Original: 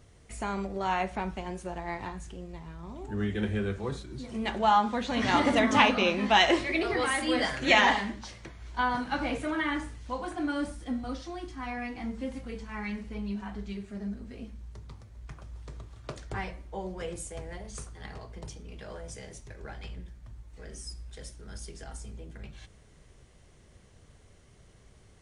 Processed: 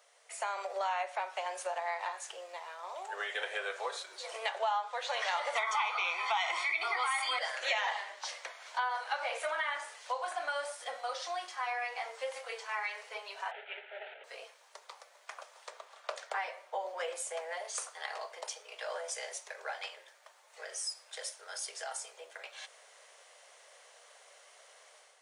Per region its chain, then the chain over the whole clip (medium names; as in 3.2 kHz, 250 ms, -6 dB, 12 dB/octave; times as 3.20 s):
5.55–7.39 s: tone controls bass -9 dB, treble -3 dB + comb 0.9 ms, depth 92% + level flattener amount 50%
13.51–14.24 s: CVSD coder 16 kbps + Butterworth band-stop 1.1 kHz, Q 2.5
15.70–17.57 s: short-mantissa float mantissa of 6-bit + treble shelf 4.3 kHz -6.5 dB
whole clip: level rider gain up to 7.5 dB; steep high-pass 530 Hz 48 dB/octave; compression 4:1, threshold -33 dBFS